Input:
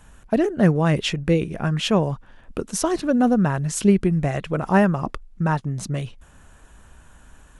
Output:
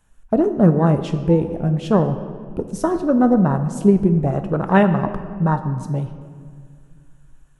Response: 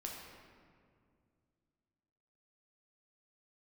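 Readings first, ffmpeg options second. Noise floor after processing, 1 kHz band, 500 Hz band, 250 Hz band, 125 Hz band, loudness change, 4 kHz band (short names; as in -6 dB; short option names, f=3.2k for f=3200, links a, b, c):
-51 dBFS, +3.0 dB, +3.5 dB, +3.5 dB, +3.5 dB, +3.0 dB, under -10 dB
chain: -filter_complex "[0:a]afwtdn=0.0501,asplit=2[a][b];[1:a]atrim=start_sample=2205,asetrate=48510,aresample=44100,highshelf=f=5.6k:g=10.5[c];[b][c]afir=irnorm=-1:irlink=0,volume=-2.5dB[d];[a][d]amix=inputs=2:normalize=0"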